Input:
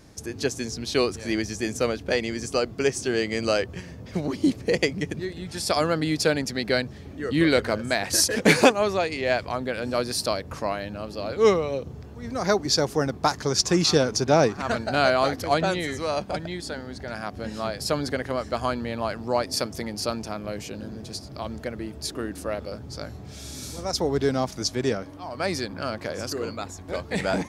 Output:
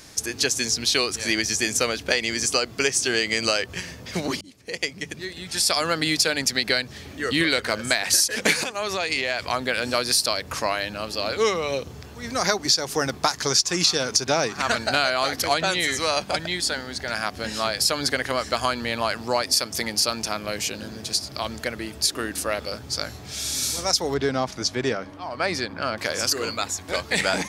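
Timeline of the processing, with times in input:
4.41–5.97 fade in
8.63–9.49 compressor 5:1, threshold -27 dBFS
24.14–25.98 LPF 1600 Hz 6 dB/oct
whole clip: tilt shelf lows -7.5 dB, about 1100 Hz; notches 50/100/150/200 Hz; compressor 6:1, threshold -24 dBFS; gain +6.5 dB

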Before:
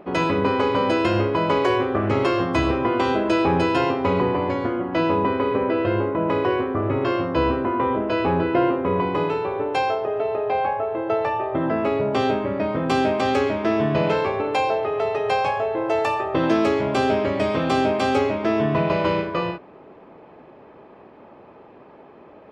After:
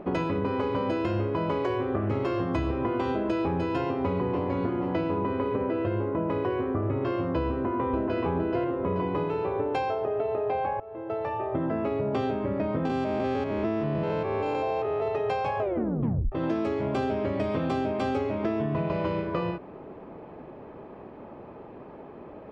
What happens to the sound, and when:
3.85–4.78 echo throw 0.48 s, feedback 35%, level -8 dB
7.5–8.21 echo throw 0.43 s, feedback 35%, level -1.5 dB
10.8–12.19 fade in, from -22 dB
12.85–15.08 stepped spectrum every 0.2 s
15.59 tape stop 0.73 s
whole clip: tilt -2 dB/oct; compressor, threshold -25 dBFS

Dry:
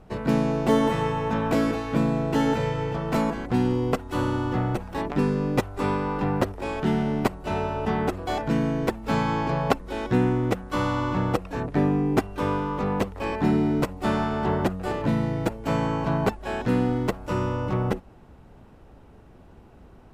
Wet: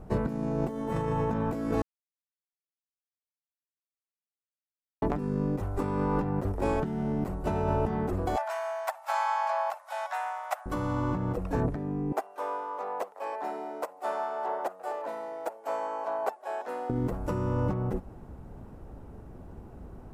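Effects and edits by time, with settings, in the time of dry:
1.82–5.02 mute
8.36–10.66 steep high-pass 610 Hz 96 dB/oct
12.12–16.9 ladder high-pass 540 Hz, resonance 40%
whole clip: low shelf 170 Hz +2.5 dB; negative-ratio compressor -28 dBFS, ratio -1; bell 3200 Hz -11 dB 1.9 oct

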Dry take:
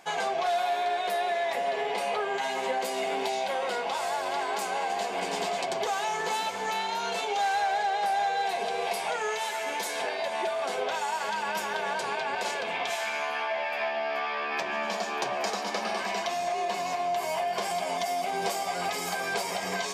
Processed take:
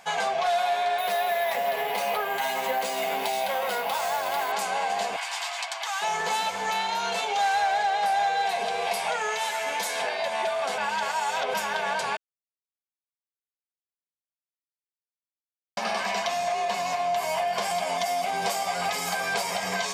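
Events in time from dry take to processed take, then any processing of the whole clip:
0.98–4.52 careless resampling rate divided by 3×, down none, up hold
5.16–6.02 HPF 940 Hz 24 dB/oct
10.78–11.54 reverse
12.17–15.77 mute
whole clip: bell 340 Hz -14 dB 0.5 oct; gain +3.5 dB

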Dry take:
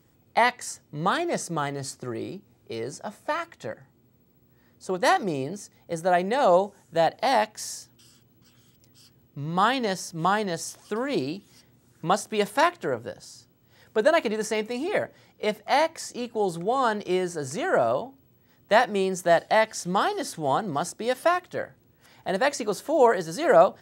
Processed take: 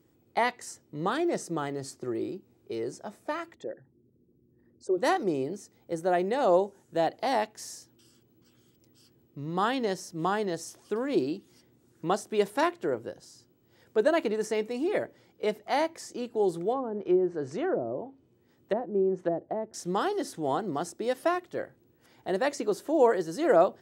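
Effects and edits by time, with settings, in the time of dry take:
3.54–4.98 formant sharpening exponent 2
16.72–19.74 treble ducked by the level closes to 440 Hz, closed at -19.5 dBFS
whole clip: bell 350 Hz +9.5 dB 0.94 oct; gain -7 dB

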